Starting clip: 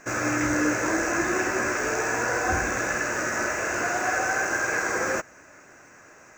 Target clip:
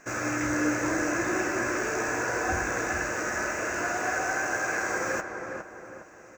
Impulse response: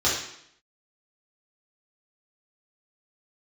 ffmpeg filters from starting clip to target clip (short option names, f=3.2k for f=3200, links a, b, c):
-filter_complex "[0:a]asplit=2[a][b];[b]adelay=410,lowpass=f=1.6k:p=1,volume=-5dB,asplit=2[c][d];[d]adelay=410,lowpass=f=1.6k:p=1,volume=0.46,asplit=2[e][f];[f]adelay=410,lowpass=f=1.6k:p=1,volume=0.46,asplit=2[g][h];[h]adelay=410,lowpass=f=1.6k:p=1,volume=0.46,asplit=2[i][j];[j]adelay=410,lowpass=f=1.6k:p=1,volume=0.46,asplit=2[k][l];[l]adelay=410,lowpass=f=1.6k:p=1,volume=0.46[m];[a][c][e][g][i][k][m]amix=inputs=7:normalize=0,volume=-4dB"